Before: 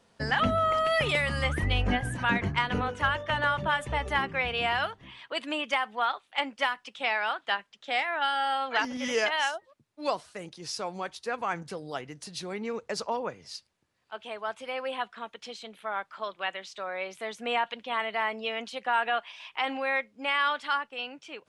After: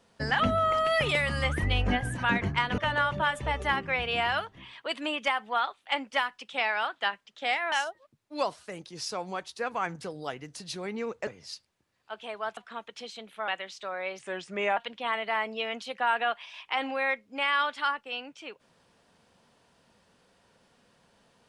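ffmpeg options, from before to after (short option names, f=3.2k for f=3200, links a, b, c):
-filter_complex "[0:a]asplit=8[a][b][c][d][e][f][g][h];[a]atrim=end=2.782[i];[b]atrim=start=3.238:end=8.182[j];[c]atrim=start=9.388:end=12.942[k];[d]atrim=start=13.288:end=14.592[l];[e]atrim=start=15.028:end=15.942[m];[f]atrim=start=16.428:end=17.144[n];[g]atrim=start=17.14:end=17.63,asetpts=PTS-STARTPTS,asetrate=37485,aresample=44100,atrim=end_sample=25422,asetpts=PTS-STARTPTS[o];[h]atrim=start=17.626[p];[i][j]acrossfade=d=0.004:c1=hsin:c2=hsin[q];[q][k]acrossfade=d=0.004:c1=hsin:c2=hsin[r];[r][l]acrossfade=d=0.004:c1=hsin:c2=hsin[s];[s][m]acrossfade=d=0.004:c1=hsin:c2=hsin[t];[t][n]acrossfade=d=0.004:c1=hsin:c2=hsin[u];[u][o]acrossfade=d=0.004:c1=hsin:c2=hsin[v];[v][p]acrossfade=d=0.004:c1=hsin:c2=hsin"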